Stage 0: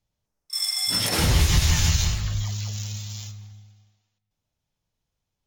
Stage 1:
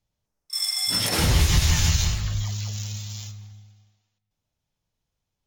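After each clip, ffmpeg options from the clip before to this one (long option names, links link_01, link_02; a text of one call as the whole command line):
ffmpeg -i in.wav -af anull out.wav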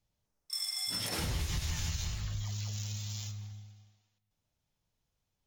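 ffmpeg -i in.wav -af "acompressor=threshold=-35dB:ratio=3,volume=-1.5dB" out.wav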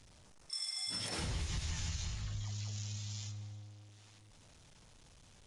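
ffmpeg -i in.wav -af "aeval=exprs='val(0)+0.5*0.00335*sgn(val(0))':channel_layout=same,aresample=22050,aresample=44100,volume=-4.5dB" out.wav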